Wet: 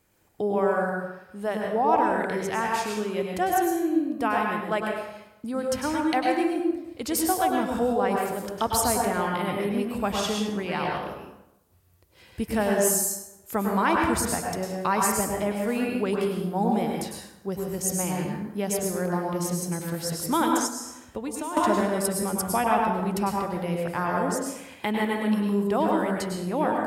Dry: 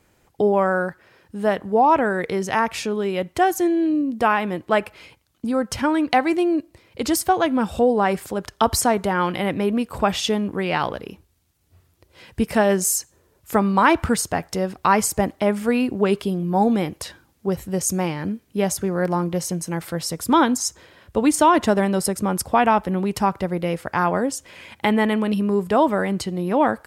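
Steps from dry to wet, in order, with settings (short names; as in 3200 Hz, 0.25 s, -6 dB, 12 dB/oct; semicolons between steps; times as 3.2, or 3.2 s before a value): high shelf 9400 Hz +10 dB; plate-style reverb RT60 0.91 s, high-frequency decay 0.65×, pre-delay 90 ms, DRR -0.5 dB; 20.66–21.57 compressor 8:1, threshold -21 dBFS, peak gain reduction 12.5 dB; gain -8.5 dB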